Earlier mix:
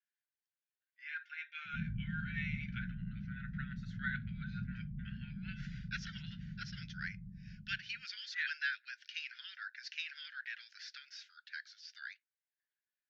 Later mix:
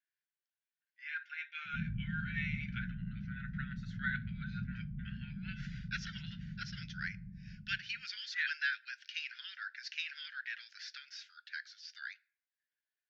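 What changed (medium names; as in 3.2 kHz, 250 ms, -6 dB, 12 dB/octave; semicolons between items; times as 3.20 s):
speech: send on; background: send +10.5 dB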